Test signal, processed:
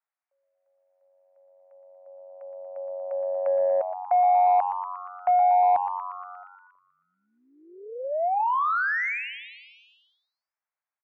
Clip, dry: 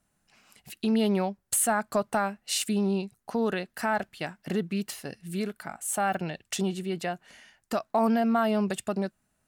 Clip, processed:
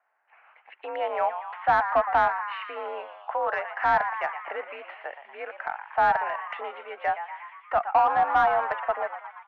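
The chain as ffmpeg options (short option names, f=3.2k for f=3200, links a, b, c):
-filter_complex "[0:a]highpass=f=590:t=q:w=0.5412,highpass=f=590:t=q:w=1.307,lowpass=f=2.3k:t=q:w=0.5176,lowpass=f=2.3k:t=q:w=0.7071,lowpass=f=2.3k:t=q:w=1.932,afreqshift=53,asplit=9[a][b][c][d][e][f][g][h][i];[b]adelay=118,afreqshift=93,volume=-11dB[j];[c]adelay=236,afreqshift=186,volume=-15dB[k];[d]adelay=354,afreqshift=279,volume=-19dB[l];[e]adelay=472,afreqshift=372,volume=-23dB[m];[f]adelay=590,afreqshift=465,volume=-27.1dB[n];[g]adelay=708,afreqshift=558,volume=-31.1dB[o];[h]adelay=826,afreqshift=651,volume=-35.1dB[p];[i]adelay=944,afreqshift=744,volume=-39.1dB[q];[a][j][k][l][m][n][o][p][q]amix=inputs=9:normalize=0,asplit=2[r][s];[s]highpass=f=720:p=1,volume=12dB,asoftclip=type=tanh:threshold=-15dB[t];[r][t]amix=inputs=2:normalize=0,lowpass=f=1k:p=1,volume=-6dB,volume=6dB"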